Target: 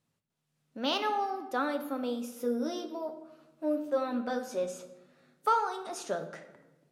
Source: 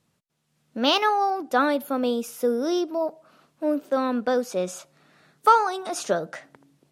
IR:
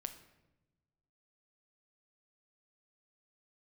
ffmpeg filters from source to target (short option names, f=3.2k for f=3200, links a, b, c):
-filter_complex "[0:a]asettb=1/sr,asplit=3[a][b][c];[a]atrim=end=2.354[d];[b]atrim=start=2.35:end=4.64,asetpts=PTS-STARTPTS,afade=t=in:d=0.004:c=qsin,afade=t=out:st=2.286:d=0.004:c=qsin,asplit=2[e][f];[f]adelay=13,volume=-4dB[g];[e][g]amix=inputs=2:normalize=0,atrim=end_sample=100989[h];[c]atrim=start=4.636[i];[d][h]acrossfade=d=0.004:c1=hsin:c2=qsin[j];[j][i]acrossfade=d=0.004:c1=qsin:c2=hsin[k];[1:a]atrim=start_sample=2205,asetrate=39249,aresample=44100[l];[k][l]afir=irnorm=-1:irlink=0,volume=-7.5dB"